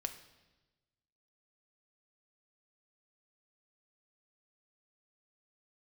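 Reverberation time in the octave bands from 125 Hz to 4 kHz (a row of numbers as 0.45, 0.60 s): 1.6, 1.4, 1.2, 1.1, 1.1, 1.1 s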